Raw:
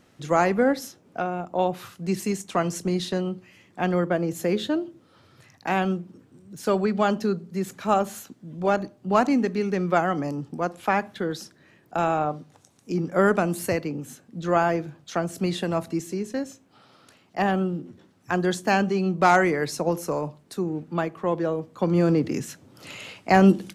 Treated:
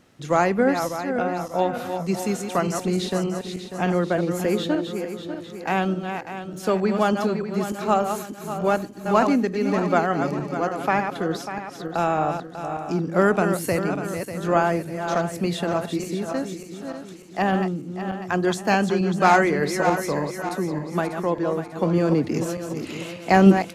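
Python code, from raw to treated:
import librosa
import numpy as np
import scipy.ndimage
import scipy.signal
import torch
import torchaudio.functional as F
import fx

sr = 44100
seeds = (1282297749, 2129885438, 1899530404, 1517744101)

y = fx.reverse_delay_fb(x, sr, ms=297, feedback_pct=64, wet_db=-7)
y = y * librosa.db_to_amplitude(1.0)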